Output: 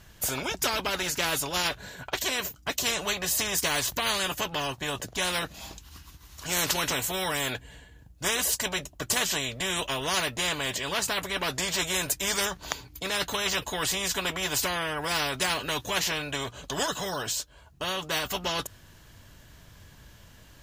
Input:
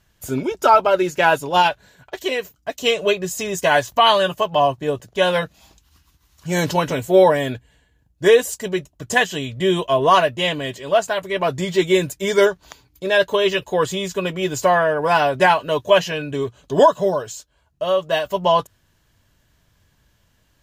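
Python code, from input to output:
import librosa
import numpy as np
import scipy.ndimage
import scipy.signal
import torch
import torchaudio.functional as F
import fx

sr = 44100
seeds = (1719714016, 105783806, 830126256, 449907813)

y = fx.spectral_comp(x, sr, ratio=4.0)
y = y * librosa.db_to_amplitude(-4.5)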